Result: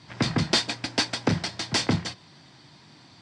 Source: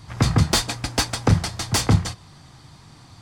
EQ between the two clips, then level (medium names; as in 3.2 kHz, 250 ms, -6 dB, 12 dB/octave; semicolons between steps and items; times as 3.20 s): cabinet simulation 210–6900 Hz, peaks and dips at 470 Hz -4 dB, 790 Hz -5 dB, 1.2 kHz -8 dB, 6.6 kHz -7 dB; 0.0 dB